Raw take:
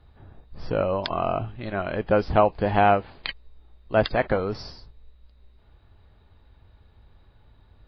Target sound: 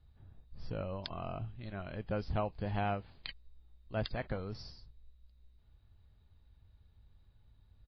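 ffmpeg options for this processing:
-af "firequalizer=gain_entry='entry(110,0);entry(340,-9);entry(860,-10);entry(4300,-2)':delay=0.05:min_phase=1,volume=0.398"

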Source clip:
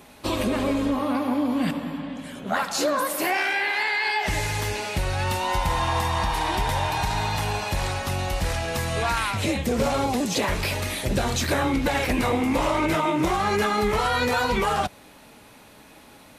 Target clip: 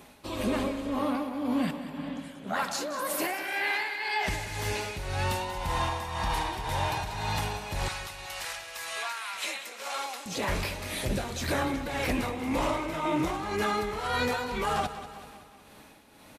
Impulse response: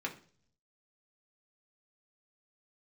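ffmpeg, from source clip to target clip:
-filter_complex "[0:a]asettb=1/sr,asplit=3[s0][s1][s2];[s0]atrim=end=7.884[s3];[s1]atrim=start=7.88:end=10.26,asetpts=PTS-STARTPTS,afade=t=in:d=0.004:c=qsin,afade=t=out:st=2.376:d=0.004:c=qsin,highpass=1100[s4];[s2]atrim=start=10.256[s5];[s3][s4]acrossfade=d=0.004:c1=hsin:c2=qsin[s6];[s6][s5]acrossfade=d=0.004:c1=qsin:c2=hsin,alimiter=limit=0.15:level=0:latency=1:release=38,tremolo=f=1.9:d=0.63,aecho=1:1:189|378|567|756|945|1134:0.237|0.13|0.0717|0.0395|0.0217|0.0119,volume=0.75"

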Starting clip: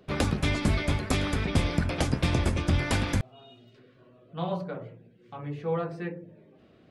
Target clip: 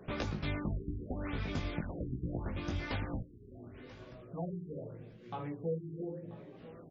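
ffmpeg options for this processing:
-af "acompressor=threshold=0.00708:ratio=3,flanger=delay=16.5:depth=3.8:speed=0.92,aecho=1:1:985|1970|2955:0.112|0.0404|0.0145,afftfilt=real='re*lt(b*sr/1024,420*pow(7500/420,0.5+0.5*sin(2*PI*0.81*pts/sr)))':imag='im*lt(b*sr/1024,420*pow(7500/420,0.5+0.5*sin(2*PI*0.81*pts/sr)))':win_size=1024:overlap=0.75,volume=2.24"

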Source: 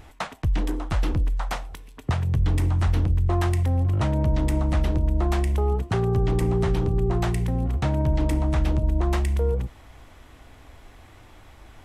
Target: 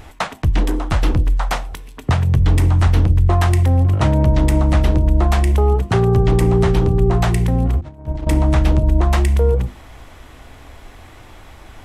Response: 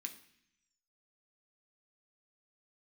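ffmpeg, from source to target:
-filter_complex "[0:a]asettb=1/sr,asplit=3[s0][s1][s2];[s0]atrim=end=7.814[s3];[s1]atrim=start=7.81:end=8.27,asetpts=PTS-STARTPTS,afade=t=in:d=0.004:c=qsin,afade=t=out:st=0.456:d=0.004:c=qsin,agate=range=0.00891:threshold=0.126:ratio=16:detection=peak[s4];[s2]atrim=start=8.266[s5];[s3][s4]acrossfade=d=0.004:c1=hsin:c2=qsin[s6];[s6][s5]acrossfade=d=0.004:c1=qsin:c2=hsin,bandreject=f=50:t=h:w=6,bandreject=f=100:t=h:w=6,bandreject=f=150:t=h:w=6,bandreject=f=200:t=h:w=6,bandreject=f=250:t=h:w=6,bandreject=f=300:t=h:w=6,bandreject=f=350:t=h:w=6,volume=2.66"

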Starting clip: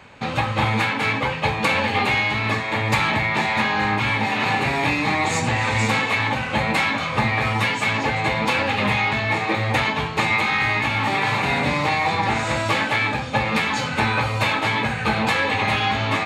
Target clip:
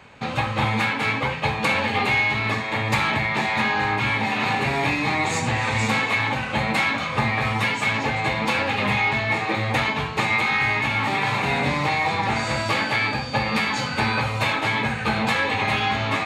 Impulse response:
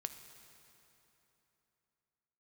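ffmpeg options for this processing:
-filter_complex "[1:a]atrim=start_sample=2205,atrim=end_sample=3969[s0];[0:a][s0]afir=irnorm=-1:irlink=0,asettb=1/sr,asplit=3[s1][s2][s3];[s1]atrim=end=12.364[s4];[s2]atrim=start=12.36:end=14.21,asetpts=PTS-STARTPTS,afade=t=in:d=0.004:c=qsin,afade=t=out:st=1.846:d=0.004:c=qsin,aeval=exprs='val(0)+0.0141*sin(2*PI*4600*n/s)':c=same[s5];[s3]atrim=start=14.206[s6];[s4][s5]acrossfade=d=0.004:c1=hsin:c2=qsin[s7];[s7][s6]acrossfade=d=0.004:c1=qsin:c2=hsin,volume=1.12"

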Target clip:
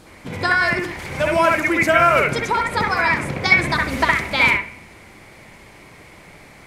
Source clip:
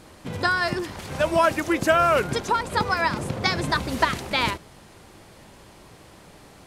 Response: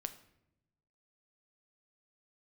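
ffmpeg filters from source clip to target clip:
-filter_complex "[0:a]asplit=2[s0][s1];[s1]lowpass=f=2200:t=q:w=9.3[s2];[1:a]atrim=start_sample=2205,adelay=64[s3];[s2][s3]afir=irnorm=-1:irlink=0,volume=0.75[s4];[s0][s4]amix=inputs=2:normalize=0,volume=1.19"

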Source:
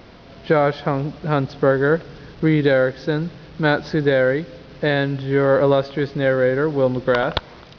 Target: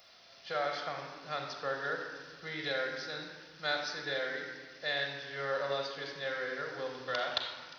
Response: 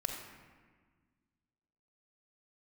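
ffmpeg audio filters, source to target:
-filter_complex "[0:a]aderivative[s0];[1:a]atrim=start_sample=2205[s1];[s0][s1]afir=irnorm=-1:irlink=0"

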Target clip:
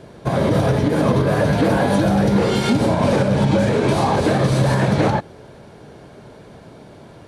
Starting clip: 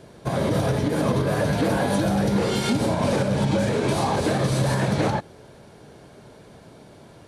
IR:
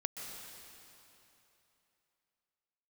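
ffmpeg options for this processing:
-af "highshelf=f=4800:g=-7.5,volume=1.88"

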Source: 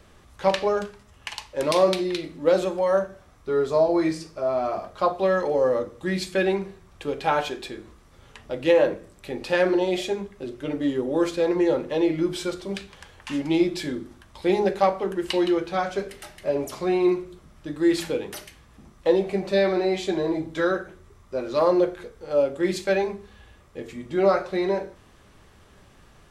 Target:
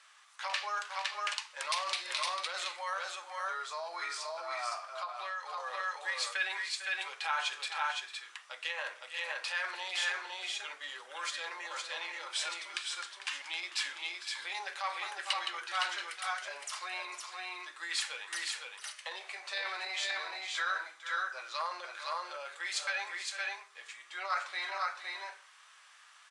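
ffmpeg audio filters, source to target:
-filter_complex "[0:a]aecho=1:1:449|505|513:0.188|0.15|0.631,alimiter=limit=0.15:level=0:latency=1:release=10,highpass=f=1100:w=0.5412,highpass=f=1100:w=1.3066,asettb=1/sr,asplit=3[s0][s1][s2];[s0]atrim=end=4.914[s3];[s1]atrim=start=4.91:end=5.58,asetpts=PTS-STARTPTS,afade=t=in:d=0.004:c=qsin,afade=t=out:st=0.666:d=0.004:c=qsin,acompressor=threshold=0.0158:ratio=6[s4];[s2]atrim=start=5.576[s5];[s3][s4]acrossfade=d=0.004:c1=hsin:c2=qsin[s6];[s6][s5]acrossfade=d=0.004:c1=qsin:c2=hsin" -ar 22050 -c:a aac -b:a 64k

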